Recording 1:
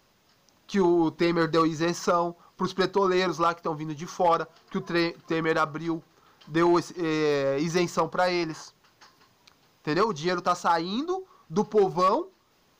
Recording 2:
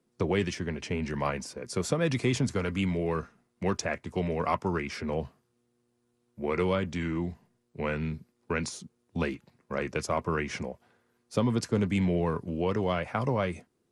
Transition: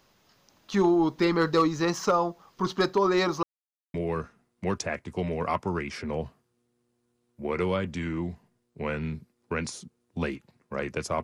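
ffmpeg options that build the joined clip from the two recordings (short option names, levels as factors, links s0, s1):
-filter_complex "[0:a]apad=whole_dur=11.23,atrim=end=11.23,asplit=2[s0][s1];[s0]atrim=end=3.43,asetpts=PTS-STARTPTS,afade=t=out:st=3.426:d=0.004:c=hsin[s2];[s1]atrim=start=3.43:end=3.94,asetpts=PTS-STARTPTS,volume=0[s3];[1:a]atrim=start=2.93:end=10.22,asetpts=PTS-STARTPTS,afade=t=in:d=0.004:c=hsin[s4];[s2][s3][s4]concat=n=3:v=0:a=1"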